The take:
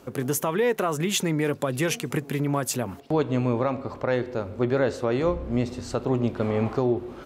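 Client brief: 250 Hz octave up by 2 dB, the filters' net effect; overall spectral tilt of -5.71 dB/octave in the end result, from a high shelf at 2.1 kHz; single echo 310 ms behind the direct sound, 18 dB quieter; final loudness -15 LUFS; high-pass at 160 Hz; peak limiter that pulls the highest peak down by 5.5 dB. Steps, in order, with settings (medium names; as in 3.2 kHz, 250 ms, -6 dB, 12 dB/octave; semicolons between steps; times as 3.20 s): high-pass 160 Hz; peaking EQ 250 Hz +3.5 dB; treble shelf 2.1 kHz -5 dB; peak limiter -16.5 dBFS; delay 310 ms -18 dB; trim +12.5 dB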